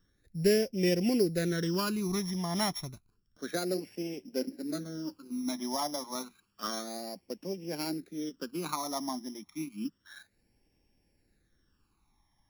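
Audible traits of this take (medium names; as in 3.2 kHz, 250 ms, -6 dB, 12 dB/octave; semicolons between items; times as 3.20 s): a buzz of ramps at a fixed pitch in blocks of 8 samples; phasing stages 12, 0.3 Hz, lowest notch 450–1300 Hz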